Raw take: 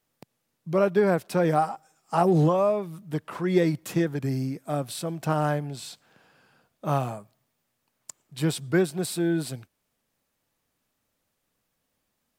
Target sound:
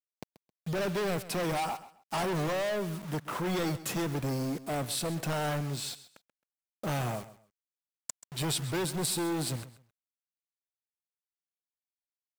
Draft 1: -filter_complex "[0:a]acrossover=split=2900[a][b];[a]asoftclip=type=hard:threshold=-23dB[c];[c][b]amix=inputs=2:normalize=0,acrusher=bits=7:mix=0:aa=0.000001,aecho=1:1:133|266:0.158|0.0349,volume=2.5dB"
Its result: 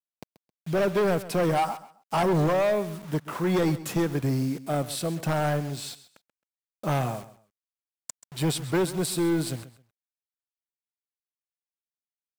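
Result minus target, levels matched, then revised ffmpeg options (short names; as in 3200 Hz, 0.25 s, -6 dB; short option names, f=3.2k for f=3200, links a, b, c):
hard clip: distortion -5 dB
-filter_complex "[0:a]acrossover=split=2900[a][b];[a]asoftclip=type=hard:threshold=-32dB[c];[c][b]amix=inputs=2:normalize=0,acrusher=bits=7:mix=0:aa=0.000001,aecho=1:1:133|266:0.158|0.0349,volume=2.5dB"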